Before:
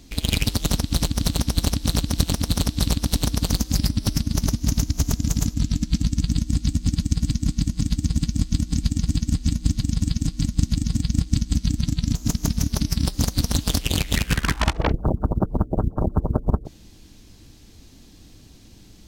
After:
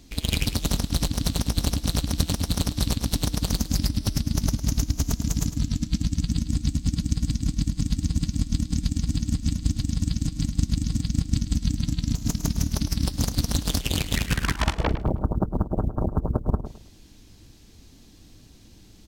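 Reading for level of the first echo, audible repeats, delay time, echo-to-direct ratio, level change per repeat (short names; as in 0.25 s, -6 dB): -12.0 dB, 3, 0.106 s, -11.5 dB, -11.0 dB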